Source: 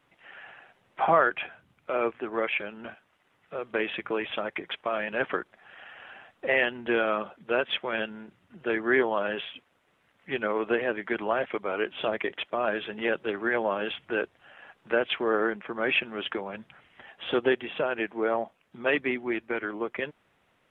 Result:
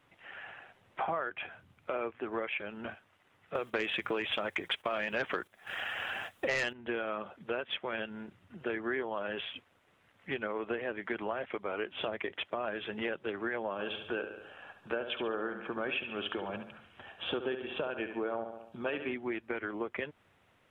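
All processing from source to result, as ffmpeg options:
-filter_complex "[0:a]asettb=1/sr,asplit=3[a][b][c];[a]atrim=end=3.554[d];[b]atrim=start=3.55:end=6.73,asetpts=PTS-STARTPTS,afade=t=in:d=0.004:c=qsin,afade=t=out:st=3.176:d=0.004:c=qsin,aemphasis=mode=production:type=75fm,agate=range=-10dB:threshold=-52dB:ratio=16:release=100:detection=peak,aeval=exprs='0.376*sin(PI/2*2*val(0)/0.376)':c=same[e];[c]atrim=start=6.726[f];[d][e]acrossfade=d=0.004:c1=hsin:c2=qsin[g];[g][f]acrossfade=d=0.004:c1=qsin:c2=hsin,asettb=1/sr,asplit=3[h][i][j];[h]atrim=end=13.724[k];[i]atrim=start=13.72:end=19.14,asetpts=PTS-STARTPTS,afade=t=in:d=0.004:c=qsin,afade=t=out:st=5.416:d=0.004:c=qsin,bandreject=f=2k:w=5,aecho=1:1:70|140|210|280|350:0.316|0.145|0.0669|0.0308|0.0142,atrim=end_sample=239022[l];[j]atrim=start=19.136[m];[k][l]acrossfade=d=0.004:c1=hsin:c2=qsin[n];[n][m]acrossfade=d=0.004:c1=qsin:c2=hsin,equalizer=f=94:w=3.2:g=8,acompressor=threshold=-33dB:ratio=4"

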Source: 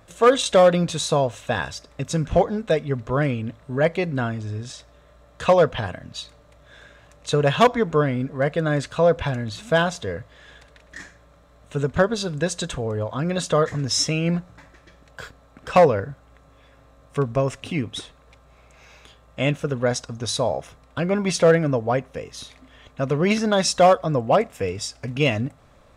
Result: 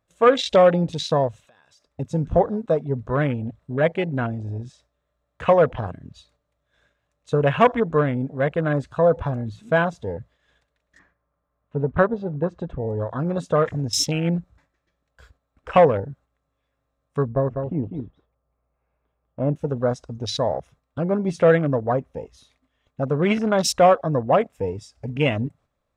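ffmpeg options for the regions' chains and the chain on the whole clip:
-filter_complex "[0:a]asettb=1/sr,asplit=3[a][b][c];[a]atrim=end=1.454[d];[b]atrim=start=1.45:end=1.86,asetpts=PTS-STARTPTS,afade=t=in:d=0.004:c=qsin,afade=t=out:st=0.406:d=0.004:c=qsin,highpass=f=340:p=1,acompressor=threshold=-36dB:ratio=8:attack=3.2:release=140:knee=1:detection=peak[e];[c]atrim=start=1.856[f];[d][e]acrossfade=d=0.004:c1=hsin:c2=qsin[g];[g][f]acrossfade=d=0.004:c1=qsin:c2=hsin,asettb=1/sr,asplit=3[h][i][j];[h]atrim=end=10.994[k];[i]atrim=start=10.99:end=12.82,asetpts=PTS-STARTPTS,afade=t=in:d=0.004:c=qsin,afade=t=out:st=1.826:d=0.004:c=qsin,lowpass=2k,equalizer=f=1.1k:t=o:w=0.59:g=5[l];[j]atrim=start=12.816[m];[k][l]acrossfade=d=0.004:c1=hsin:c2=qsin[n];[n][m]acrossfade=d=0.004:c1=qsin:c2=hsin,asettb=1/sr,asplit=3[o][p][q];[o]atrim=end=17.284[r];[p]atrim=start=17.28:end=19.56,asetpts=PTS-STARTPTS,afade=t=in:d=0.004:c=qsin,afade=t=out:st=2.276:d=0.004:c=qsin,lowpass=1.1k,aecho=1:1:198:0.501,atrim=end_sample=100548[s];[q]atrim=start=19.556[t];[r][s]acrossfade=d=0.004:c1=hsin:c2=qsin[u];[u][t]acrossfade=d=0.004:c1=qsin:c2=hsin,agate=range=-7dB:threshold=-47dB:ratio=16:detection=peak,afwtdn=0.0355"

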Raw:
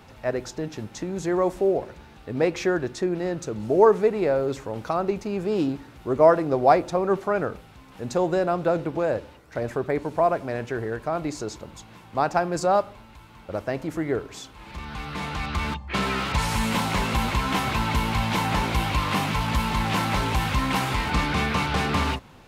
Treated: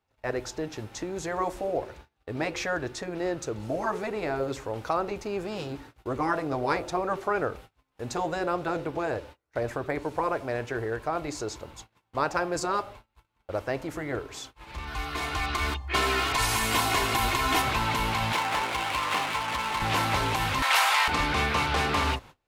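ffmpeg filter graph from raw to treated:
-filter_complex "[0:a]asettb=1/sr,asplit=3[a][b][c];[a]atrim=end=14.874[d];[b]atrim=start=14.87:end=17.62,asetpts=PTS-STARTPTS,afade=t=in:d=0.004:c=qsin,afade=t=out:st=2.746:d=0.004:c=qsin,highshelf=f=8.9k:g=8,aecho=1:1:2.8:0.57,atrim=end_sample=121275[e];[c]atrim=start=17.616[f];[d][e]acrossfade=d=0.004:c1=hsin:c2=qsin[g];[g][f]acrossfade=d=0.004:c1=qsin:c2=hsin,asettb=1/sr,asplit=3[h][i][j];[h]atrim=end=18.324[k];[i]atrim=start=18.32:end=19.82,asetpts=PTS-STARTPTS,afade=t=in:d=0.004:c=qsin,afade=t=out:st=1.496:d=0.004:c=qsin,highpass=f=540:p=1,adynamicsmooth=sensitivity=8:basefreq=880[l];[j]atrim=start=19.816[m];[k][l]acrossfade=d=0.004:c1=hsin:c2=qsin[n];[n][m]acrossfade=d=0.004:c1=qsin:c2=hsin,asettb=1/sr,asplit=3[o][p][q];[o]atrim=end=20.624[r];[p]atrim=start=20.62:end=21.08,asetpts=PTS-STARTPTS,afade=t=in:d=0.004:c=qsin,afade=t=out:st=0.456:d=0.004:c=qsin,highpass=f=700:w=0.5412,highpass=f=700:w=1.3066,acontrast=68[s];[q]atrim=start=21.076[t];[r][s]acrossfade=d=0.004:c1=hsin:c2=qsin[u];[u][t]acrossfade=d=0.004:c1=qsin:c2=hsin,afftfilt=real='re*lt(hypot(re,im),0.562)':imag='im*lt(hypot(re,im),0.562)':win_size=1024:overlap=0.75,agate=range=-29dB:threshold=-43dB:ratio=16:detection=peak,equalizer=f=190:w=1.6:g=-9.5"

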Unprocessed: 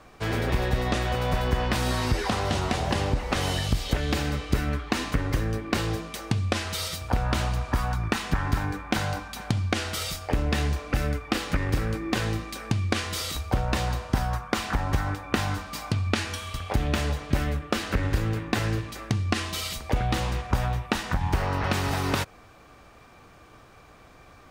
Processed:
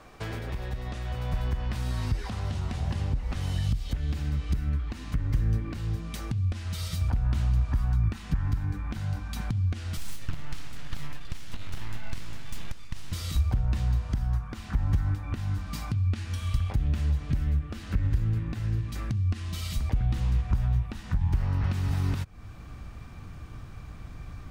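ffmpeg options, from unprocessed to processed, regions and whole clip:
-filter_complex "[0:a]asettb=1/sr,asplit=3[a][b][c];[a]atrim=end=9.974[d];[b]atrim=start=9.97:end=13.12,asetpts=PTS-STARTPTS,afade=t=in:d=0.004:c=qsin,afade=t=out:st=3.146:d=0.004:c=qsin,highpass=490,equalizer=f=12k:t=o:w=1.6:g=-4,aeval=exprs='abs(val(0))':c=same[e];[c]atrim=start=13.116[f];[d][e]acrossfade=d=0.004:c1=hsin:c2=qsin[g];[g][f]acrossfade=d=0.004:c1=qsin:c2=hsin,acompressor=threshold=-36dB:ratio=3,alimiter=level_in=2dB:limit=-24dB:level=0:latency=1:release=496,volume=-2dB,asubboost=boost=7:cutoff=180"

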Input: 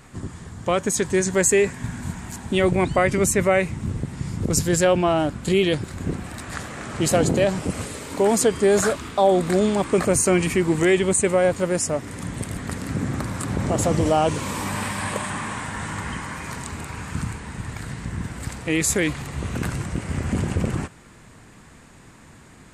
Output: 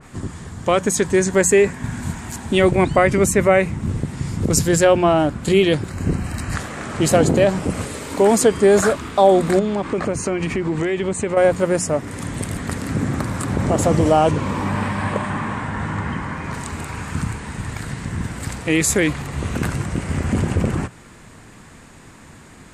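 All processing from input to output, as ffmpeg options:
-filter_complex "[0:a]asettb=1/sr,asplit=3[a][b][c];[a]atrim=end=5.904[d];[b]atrim=start=5.9:end=6.56,asetpts=PTS-STARTPTS,afade=t=in:d=0.004:c=qsin,afade=t=out:st=0.656:d=0.004:c=qsin,asubboost=boost=10.5:cutoff=250,asuperstop=centerf=3500:order=8:qfactor=6.4[e];[c]atrim=start=6.556[f];[d][e]acrossfade=d=0.004:c1=hsin:c2=qsin[g];[g][f]acrossfade=d=0.004:c1=qsin:c2=hsin,asettb=1/sr,asplit=3[h][i][j];[h]atrim=end=9.594[k];[i]atrim=start=9.59:end=11.37,asetpts=PTS-STARTPTS,afade=t=in:d=0.004:c=qsin,afade=t=out:st=1.776:d=0.004:c=qsin,lowpass=5.6k,acompressor=threshold=-22dB:ratio=5:attack=3.2:release=140:knee=1:detection=peak[l];[j]atrim=start=11.366[m];[k][l]acrossfade=d=0.004:c1=hsin:c2=qsin[n];[n][m]acrossfade=d=0.004:c1=qsin:c2=hsin,asettb=1/sr,asplit=3[o][p][q];[o]atrim=end=14.314[r];[p]atrim=start=14.31:end=16.54,asetpts=PTS-STARTPTS,afade=t=in:d=0.004:c=qsin,afade=t=out:st=2.226:d=0.004:c=qsin,highpass=f=200:p=1,aemphasis=mode=reproduction:type=bsi[s];[q]atrim=start=16.536[t];[r][s]acrossfade=d=0.004:c1=hsin:c2=qsin[u];[u][t]acrossfade=d=0.004:c1=qsin:c2=hsin,bandreject=f=60:t=h:w=6,bandreject=f=120:t=h:w=6,bandreject=f=180:t=h:w=6,adynamicequalizer=threshold=0.0112:dfrequency=2300:dqfactor=0.7:tfrequency=2300:tqfactor=0.7:attack=5:release=100:ratio=0.375:range=2.5:mode=cutabove:tftype=highshelf,volume=4.5dB"

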